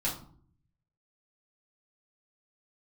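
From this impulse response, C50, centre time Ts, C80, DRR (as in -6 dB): 8.0 dB, 25 ms, 12.5 dB, -6.5 dB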